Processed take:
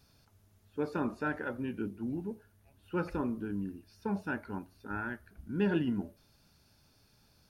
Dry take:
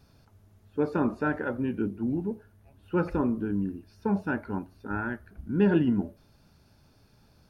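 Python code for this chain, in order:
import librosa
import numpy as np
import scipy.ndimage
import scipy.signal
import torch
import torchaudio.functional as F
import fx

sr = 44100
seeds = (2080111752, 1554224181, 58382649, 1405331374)

y = fx.high_shelf(x, sr, hz=2000.0, db=9.5)
y = F.gain(torch.from_numpy(y), -7.5).numpy()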